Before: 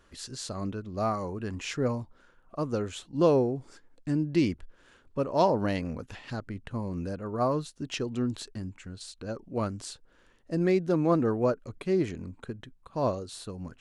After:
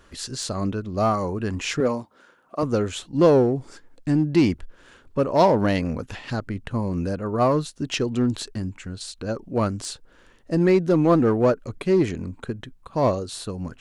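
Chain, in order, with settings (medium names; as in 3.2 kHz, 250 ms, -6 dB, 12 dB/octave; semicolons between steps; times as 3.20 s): 1.80–2.63 s: high-pass 230 Hz 12 dB/octave; in parallel at -6 dB: hard clipper -25 dBFS, distortion -9 dB; on the sum: trim +4.5 dB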